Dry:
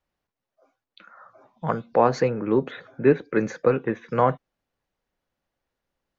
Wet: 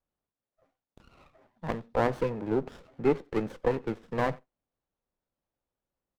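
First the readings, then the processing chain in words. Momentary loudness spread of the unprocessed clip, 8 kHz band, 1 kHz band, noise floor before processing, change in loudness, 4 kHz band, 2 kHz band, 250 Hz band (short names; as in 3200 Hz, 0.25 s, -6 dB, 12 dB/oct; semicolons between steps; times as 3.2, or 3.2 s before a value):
9 LU, n/a, -8.5 dB, under -85 dBFS, -7.0 dB, -4.5 dB, -5.5 dB, -6.5 dB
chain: speakerphone echo 90 ms, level -23 dB; running maximum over 17 samples; gain -6.5 dB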